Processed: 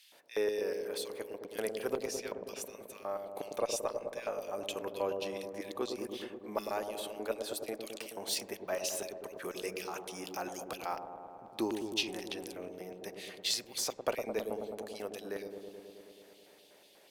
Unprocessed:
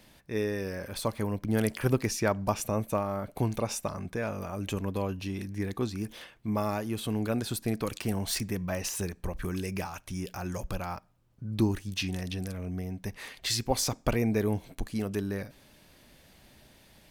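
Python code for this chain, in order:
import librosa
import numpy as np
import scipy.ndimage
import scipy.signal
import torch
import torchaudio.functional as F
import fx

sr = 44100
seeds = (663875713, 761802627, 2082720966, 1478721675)

p1 = fx.rider(x, sr, range_db=10, speed_s=2.0)
p2 = fx.filter_lfo_highpass(p1, sr, shape='square', hz=4.1, low_hz=480.0, high_hz=3100.0, q=1.6)
p3 = fx.cheby_harmonics(p2, sr, harmonics=(2,), levels_db=(-23,), full_scale_db=-12.0)
p4 = p3 + fx.echo_wet_lowpass(p3, sr, ms=107, feedback_pct=79, hz=680.0, wet_db=-4.0, dry=0)
y = F.gain(torch.from_numpy(p4), -5.0).numpy()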